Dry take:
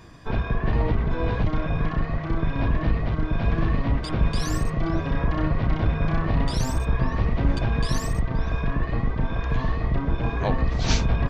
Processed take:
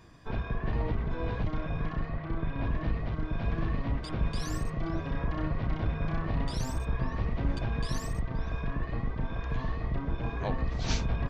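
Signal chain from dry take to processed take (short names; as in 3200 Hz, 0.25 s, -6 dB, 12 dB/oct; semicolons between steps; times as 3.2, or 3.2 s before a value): 2.09–2.65 bell 7000 Hz -13.5 dB 0.7 oct; gain -8 dB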